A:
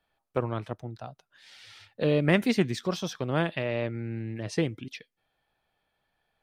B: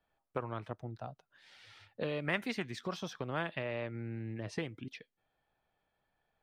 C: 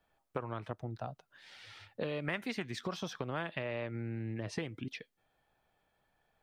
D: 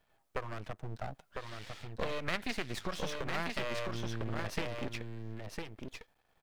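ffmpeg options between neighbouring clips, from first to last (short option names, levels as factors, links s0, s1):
-filter_complex "[0:a]acrossover=split=830[s0][s1];[s0]acompressor=threshold=0.02:ratio=6[s2];[s1]highshelf=f=2900:g=-10[s3];[s2][s3]amix=inputs=2:normalize=0,volume=0.75"
-af "acompressor=threshold=0.01:ratio=2.5,volume=1.68"
-af "aecho=1:1:1003:0.596,aeval=exprs='max(val(0),0)':c=same,volume=1.88"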